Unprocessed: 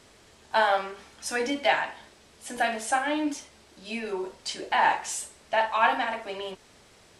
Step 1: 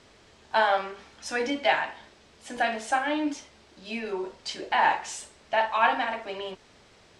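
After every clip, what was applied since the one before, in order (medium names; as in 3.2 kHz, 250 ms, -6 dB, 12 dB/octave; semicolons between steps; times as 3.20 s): low-pass 6.1 kHz 12 dB/octave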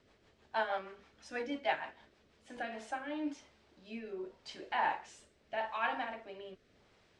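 treble shelf 4.9 kHz -10 dB; rotary cabinet horn 6.3 Hz, later 0.85 Hz, at 2.21 s; trim -8.5 dB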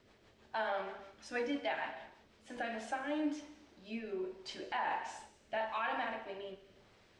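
gated-style reverb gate 390 ms falling, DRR 9.5 dB; peak limiter -29 dBFS, peak gain reduction 10.5 dB; trim +2 dB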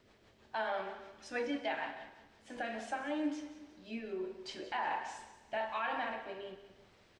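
feedback delay 182 ms, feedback 39%, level -15 dB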